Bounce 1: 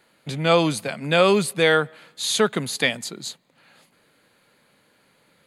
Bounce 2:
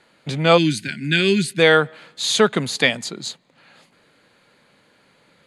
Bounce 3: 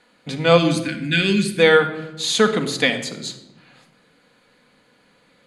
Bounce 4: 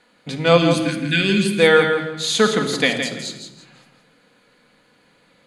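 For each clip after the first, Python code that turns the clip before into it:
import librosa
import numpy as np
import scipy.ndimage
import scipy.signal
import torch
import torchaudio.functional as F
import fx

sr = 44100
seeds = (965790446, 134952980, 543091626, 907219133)

y1 = fx.spec_box(x, sr, start_s=0.57, length_s=1.01, low_hz=400.0, high_hz=1400.0, gain_db=-24)
y1 = scipy.signal.sosfilt(scipy.signal.butter(2, 7700.0, 'lowpass', fs=sr, output='sos'), y1)
y1 = y1 * librosa.db_to_amplitude(4.0)
y2 = fx.room_shoebox(y1, sr, seeds[0], volume_m3=3900.0, walls='furnished', distance_m=1.9)
y2 = y2 * librosa.db_to_amplitude(-2.0)
y3 = fx.echo_feedback(y2, sr, ms=166, feedback_pct=26, wet_db=-7.5)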